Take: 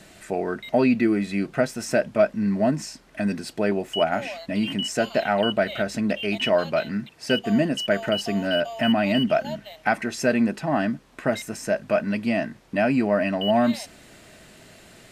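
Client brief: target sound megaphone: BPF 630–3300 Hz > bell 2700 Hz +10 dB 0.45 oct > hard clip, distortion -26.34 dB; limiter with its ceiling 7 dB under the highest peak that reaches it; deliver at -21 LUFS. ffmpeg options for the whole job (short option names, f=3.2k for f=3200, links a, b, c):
-af "alimiter=limit=-13.5dB:level=0:latency=1,highpass=630,lowpass=3.3k,equalizer=f=2.7k:t=o:w=0.45:g=10,asoftclip=type=hard:threshold=-14.5dB,volume=6.5dB"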